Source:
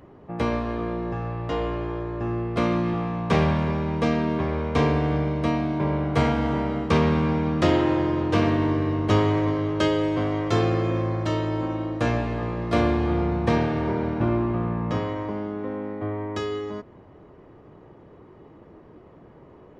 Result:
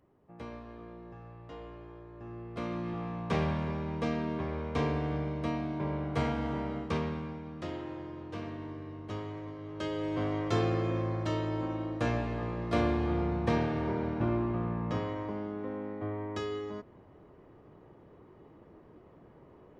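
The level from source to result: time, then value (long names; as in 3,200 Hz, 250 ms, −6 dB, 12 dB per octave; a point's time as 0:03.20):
0:02.08 −19 dB
0:03.09 −9.5 dB
0:06.77 −9.5 dB
0:07.42 −19 dB
0:09.57 −19 dB
0:10.23 −7 dB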